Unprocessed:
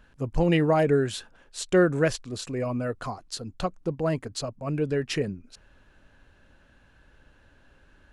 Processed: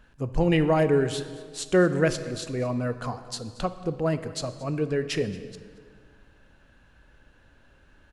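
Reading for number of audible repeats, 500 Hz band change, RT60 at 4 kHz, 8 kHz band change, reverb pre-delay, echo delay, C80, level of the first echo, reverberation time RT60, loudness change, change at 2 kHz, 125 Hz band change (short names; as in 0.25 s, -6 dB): 1, +0.5 dB, 1.4 s, 0.0 dB, 10 ms, 0.228 s, 12.5 dB, -19.0 dB, 1.9 s, +0.5 dB, +0.5 dB, +0.5 dB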